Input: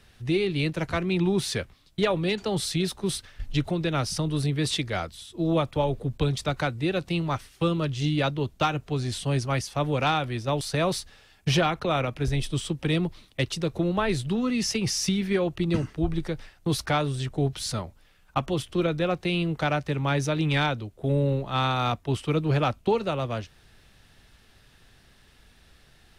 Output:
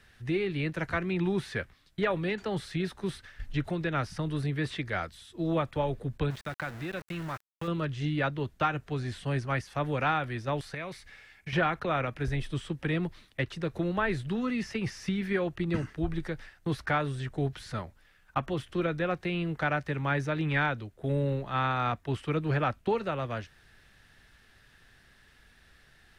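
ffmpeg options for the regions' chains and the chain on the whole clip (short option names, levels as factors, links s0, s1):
-filter_complex "[0:a]asettb=1/sr,asplit=3[s0][s1][s2];[s0]atrim=end=6.304[s3];[s1]atrim=start=6.3:end=7.68,asetpts=PTS-STARTPTS,afade=t=in:d=0.004:c=qsin,afade=t=out:st=1.376:d=0.004:c=qsin,equalizer=f=430:w=4.7:g=-5,acompressor=threshold=0.0355:ratio=2.5:attack=3.2:release=140:knee=1:detection=peak,aeval=exprs='val(0)*gte(abs(val(0)),0.0158)':c=same[s4];[s2]atrim=start=7.676[s5];[s3][s4]acrossfade=d=0.004:c1=hsin:c2=qsin[s6];[s6][s5]acrossfade=d=0.004:c1=qsin:c2=hsin,asettb=1/sr,asplit=3[s7][s8][s9];[s7]atrim=end=10.744[s10];[s8]atrim=start=10.74:end=11.53,asetpts=PTS-STARTPTS,afade=t=in:d=0.004:c=qsin,afade=t=out:st=0.786:d=0.004:c=qsin,equalizer=f=2200:w=5.8:g=13.5,acompressor=threshold=0.0112:ratio=2:attack=3.2:release=140:knee=1:detection=peak[s11];[s9]atrim=start=11.526[s12];[s10][s11]acrossfade=d=0.004:c1=hsin:c2=qsin[s13];[s13][s12]acrossfade=d=0.004:c1=qsin:c2=hsin,acrossover=split=2700[s14][s15];[s15]acompressor=threshold=0.00562:ratio=4:attack=1:release=60[s16];[s14][s16]amix=inputs=2:normalize=0,equalizer=f=1700:w=1.9:g=8.5,volume=0.562"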